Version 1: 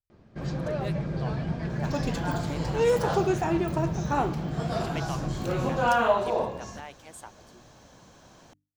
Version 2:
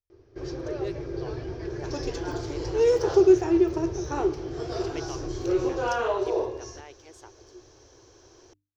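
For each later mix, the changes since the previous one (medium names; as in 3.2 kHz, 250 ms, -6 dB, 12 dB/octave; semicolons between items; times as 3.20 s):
master: add FFT filter 110 Hz 0 dB, 190 Hz -26 dB, 370 Hz +11 dB, 600 Hz -6 dB, 3.9 kHz -4 dB, 5.8 kHz +6 dB, 8.4 kHz -15 dB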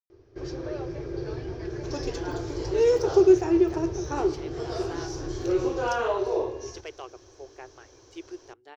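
speech: entry +1.90 s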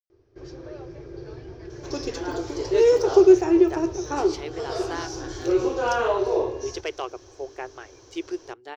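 speech +9.5 dB; first sound -5.5 dB; second sound +3.5 dB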